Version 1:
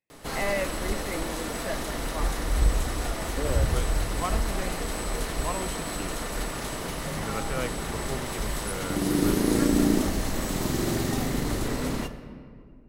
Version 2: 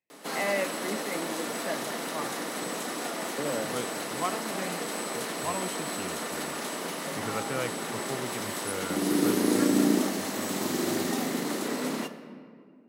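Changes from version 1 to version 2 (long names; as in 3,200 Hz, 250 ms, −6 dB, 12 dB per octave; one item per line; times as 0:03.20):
background: add Butterworth high-pass 180 Hz 36 dB per octave
master: add high-pass filter 110 Hz 6 dB per octave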